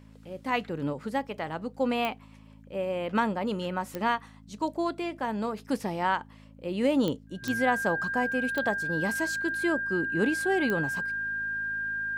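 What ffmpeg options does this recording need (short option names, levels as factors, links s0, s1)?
-af "adeclick=t=4,bandreject=f=53.6:t=h:w=4,bandreject=f=107.2:t=h:w=4,bandreject=f=160.8:t=h:w=4,bandreject=f=214.4:t=h:w=4,bandreject=f=268:t=h:w=4,bandreject=f=1600:w=30"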